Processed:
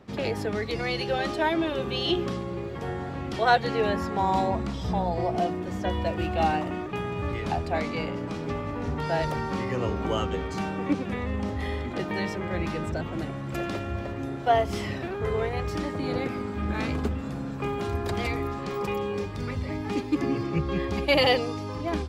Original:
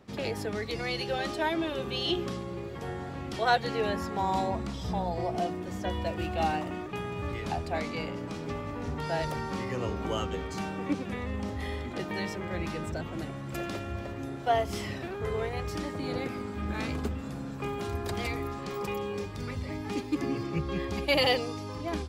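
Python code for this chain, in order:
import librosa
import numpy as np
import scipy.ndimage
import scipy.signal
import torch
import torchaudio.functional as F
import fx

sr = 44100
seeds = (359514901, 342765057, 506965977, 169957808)

y = fx.high_shelf(x, sr, hz=5000.0, db=-7.5)
y = F.gain(torch.from_numpy(y), 4.5).numpy()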